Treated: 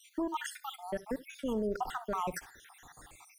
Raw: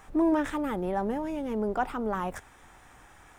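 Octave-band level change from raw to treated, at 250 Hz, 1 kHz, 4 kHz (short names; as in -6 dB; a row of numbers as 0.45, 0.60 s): -10.0, -5.5, +3.0 dB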